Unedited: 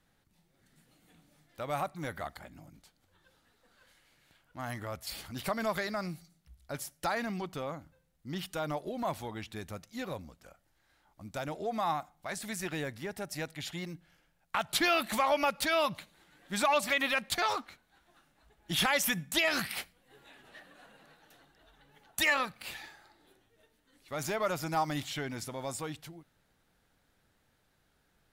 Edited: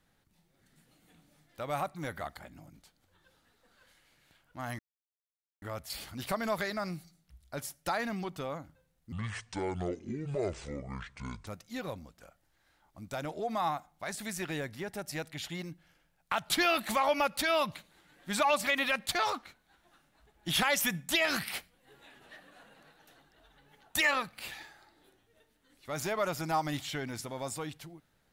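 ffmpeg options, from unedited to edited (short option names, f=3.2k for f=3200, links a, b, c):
-filter_complex "[0:a]asplit=4[a][b][c][d];[a]atrim=end=4.79,asetpts=PTS-STARTPTS,afade=t=out:st=4.786:d=0.004:c=hsin,apad=pad_dur=0.83[e];[b]atrim=start=4.79:end=8.294,asetpts=PTS-STARTPTS,afade=t=in:d=0.004:c=hsin[f];[c]atrim=start=8.29:end=9.7,asetpts=PTS-STARTPTS,asetrate=26460,aresample=44100[g];[d]atrim=start=9.696[h];[e][f]concat=n=2:v=0:a=1[i];[i][g]acrossfade=d=0.004:c1=hsin:c2=hsin[j];[j][h]acrossfade=d=0.004:c1=hsin:c2=hsin"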